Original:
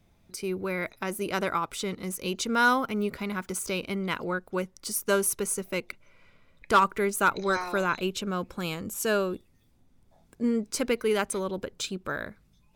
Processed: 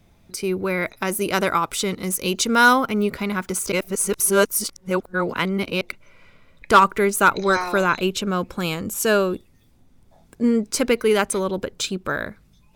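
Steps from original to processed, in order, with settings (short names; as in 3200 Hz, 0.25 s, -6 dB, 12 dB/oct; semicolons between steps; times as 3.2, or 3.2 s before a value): 0.99–2.73 high shelf 5200 Hz +5 dB; 3.72–5.81 reverse; gain +7.5 dB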